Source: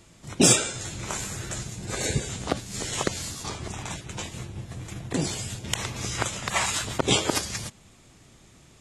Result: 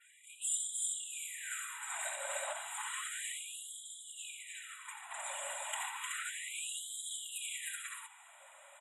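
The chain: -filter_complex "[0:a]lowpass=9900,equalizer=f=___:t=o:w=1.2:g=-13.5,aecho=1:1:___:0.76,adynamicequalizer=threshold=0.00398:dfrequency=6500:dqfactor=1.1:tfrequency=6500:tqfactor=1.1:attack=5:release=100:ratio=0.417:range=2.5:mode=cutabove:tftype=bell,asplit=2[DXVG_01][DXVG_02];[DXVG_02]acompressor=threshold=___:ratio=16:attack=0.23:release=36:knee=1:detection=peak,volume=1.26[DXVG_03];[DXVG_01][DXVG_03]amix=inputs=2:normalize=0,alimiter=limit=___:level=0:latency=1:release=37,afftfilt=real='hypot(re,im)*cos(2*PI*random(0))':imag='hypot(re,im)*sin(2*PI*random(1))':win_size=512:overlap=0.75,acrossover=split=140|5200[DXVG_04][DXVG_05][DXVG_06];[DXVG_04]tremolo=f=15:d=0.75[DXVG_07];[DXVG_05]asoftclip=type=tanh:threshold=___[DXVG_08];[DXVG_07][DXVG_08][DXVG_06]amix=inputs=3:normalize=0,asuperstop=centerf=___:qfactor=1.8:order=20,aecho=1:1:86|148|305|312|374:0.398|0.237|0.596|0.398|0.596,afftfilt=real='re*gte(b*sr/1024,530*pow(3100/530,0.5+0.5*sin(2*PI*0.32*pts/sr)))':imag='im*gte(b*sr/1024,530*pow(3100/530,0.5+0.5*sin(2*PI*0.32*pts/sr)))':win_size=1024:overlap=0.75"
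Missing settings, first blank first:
4300, 2.1, 0.02, 0.188, 0.0211, 5300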